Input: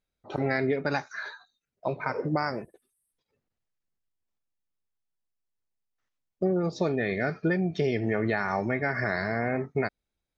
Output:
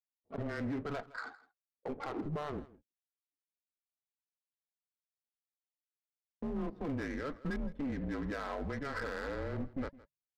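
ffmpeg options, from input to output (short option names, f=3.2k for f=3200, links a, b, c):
-af "asetnsamples=n=441:p=0,asendcmd='9.35 highpass f 110',highpass=f=490:p=1,agate=range=-24dB:threshold=-42dB:ratio=16:detection=peak,lowpass=f=1.7k:p=1,alimiter=level_in=2.5dB:limit=-24dB:level=0:latency=1:release=12,volume=-2.5dB,afreqshift=-150,adynamicsmooth=sensitivity=6.5:basefreq=620,flanger=delay=0.9:depth=6.3:regen=-76:speed=0.79:shape=sinusoidal,asoftclip=type=hard:threshold=-35.5dB,aecho=1:1:163:0.1,volume=3.5dB"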